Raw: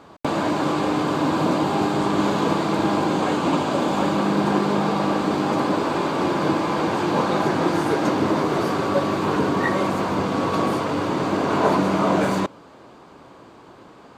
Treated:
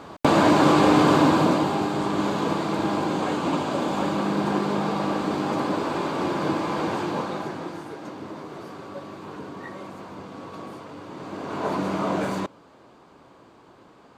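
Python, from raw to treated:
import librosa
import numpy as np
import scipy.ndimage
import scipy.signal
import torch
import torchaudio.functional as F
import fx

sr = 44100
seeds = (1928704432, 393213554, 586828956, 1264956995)

y = fx.gain(x, sr, db=fx.line((1.14, 5.0), (1.83, -4.0), (6.94, -4.0), (7.91, -16.5), (11.05, -16.5), (11.86, -6.0)))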